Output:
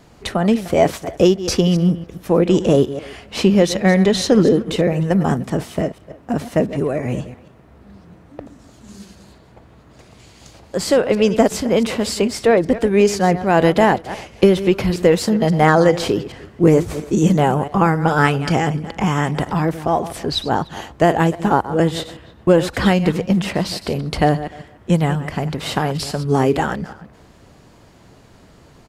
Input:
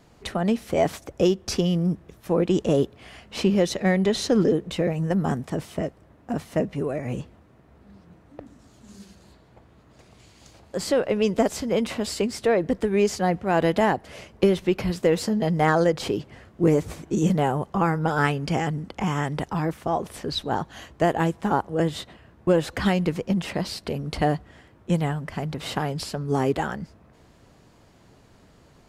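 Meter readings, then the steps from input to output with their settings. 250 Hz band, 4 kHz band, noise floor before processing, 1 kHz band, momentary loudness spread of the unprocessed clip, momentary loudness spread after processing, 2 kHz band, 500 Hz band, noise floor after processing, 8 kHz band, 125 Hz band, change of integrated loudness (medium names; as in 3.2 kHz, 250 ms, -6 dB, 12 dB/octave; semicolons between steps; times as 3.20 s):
+7.0 dB, +7.0 dB, -55 dBFS, +7.0 dB, 9 LU, 10 LU, +7.0 dB, +7.0 dB, -48 dBFS, +7.0 dB, +7.0 dB, +7.0 dB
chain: chunks repeated in reverse 136 ms, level -13 dB; speakerphone echo 300 ms, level -21 dB; trim +7 dB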